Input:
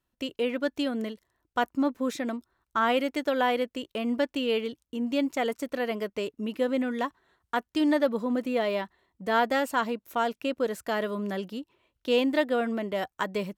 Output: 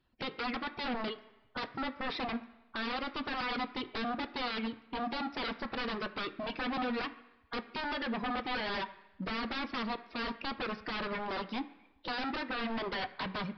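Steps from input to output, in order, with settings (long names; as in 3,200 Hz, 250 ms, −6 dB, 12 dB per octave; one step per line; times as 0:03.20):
spectral magnitudes quantised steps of 15 dB
reverb reduction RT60 0.97 s
0:01.07–0:01.78: comb filter 7.3 ms, depth 89%
in parallel at +0.5 dB: downward compressor, threshold −33 dBFS, peak gain reduction 13 dB
on the sum: brickwall limiter −19.5 dBFS, peak gain reduction 9 dB
wave folding −31 dBFS
tape delay 72 ms, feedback 67%, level −21 dB
on a send at −8.5 dB: convolution reverb RT60 1.0 s, pre-delay 3 ms
on the sum: downsampling to 11,025 Hz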